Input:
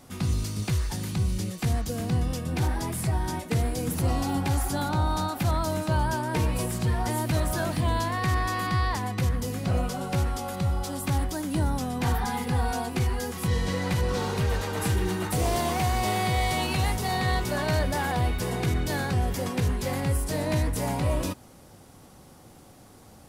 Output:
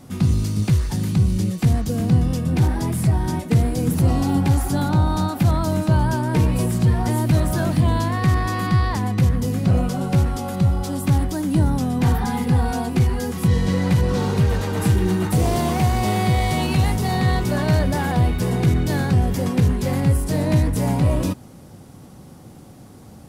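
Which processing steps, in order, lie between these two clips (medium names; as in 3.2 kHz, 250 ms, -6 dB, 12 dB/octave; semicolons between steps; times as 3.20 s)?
peaking EQ 160 Hz +9.5 dB 2.4 oct; in parallel at -11 dB: one-sided clip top -24 dBFS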